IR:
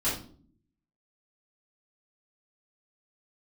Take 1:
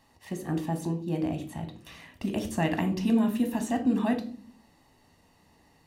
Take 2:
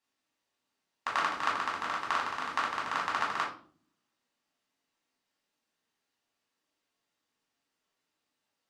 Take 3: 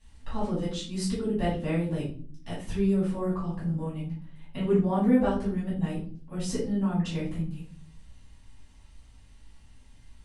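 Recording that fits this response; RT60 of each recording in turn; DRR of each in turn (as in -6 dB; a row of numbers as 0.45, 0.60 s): 3; 0.50, 0.50, 0.50 s; 5.5, -4.0, -11.0 dB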